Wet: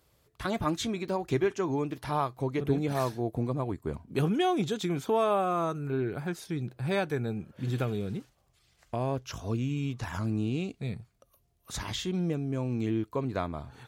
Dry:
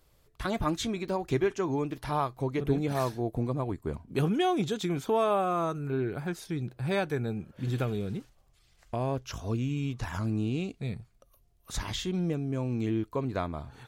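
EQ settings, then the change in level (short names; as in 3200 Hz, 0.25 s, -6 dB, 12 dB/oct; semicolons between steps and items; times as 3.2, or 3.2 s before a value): HPF 65 Hz; 0.0 dB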